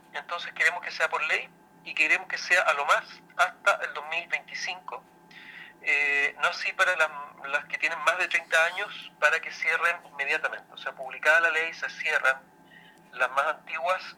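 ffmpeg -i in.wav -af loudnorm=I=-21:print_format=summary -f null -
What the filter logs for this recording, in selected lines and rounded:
Input Integrated:    -25.8 LUFS
Input True Peak:      -6.9 dBTP
Input LRA:             2.0 LU
Input Threshold:     -36.5 LUFS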